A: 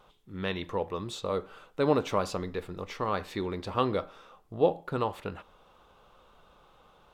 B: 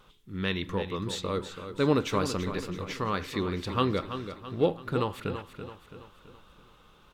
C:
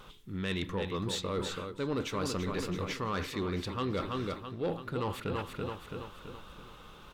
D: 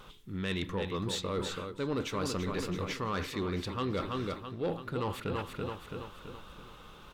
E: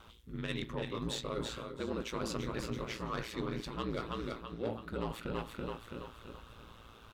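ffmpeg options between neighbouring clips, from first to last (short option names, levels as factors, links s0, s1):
-filter_complex "[0:a]equalizer=f=700:t=o:w=1.1:g=-11,asplit=2[s0][s1];[s1]aecho=0:1:332|664|996|1328|1660:0.316|0.152|0.0729|0.035|0.0168[s2];[s0][s2]amix=inputs=2:normalize=0,volume=1.68"
-af "areverse,acompressor=threshold=0.0141:ratio=4,areverse,asoftclip=type=tanh:threshold=0.0282,volume=2.11"
-af anull
-filter_complex "[0:a]asplit=2[s0][s1];[s1]adelay=17,volume=0.211[s2];[s0][s2]amix=inputs=2:normalize=0,aecho=1:1:358:0.211,aeval=exprs='val(0)*sin(2*PI*57*n/s)':c=same,volume=0.841"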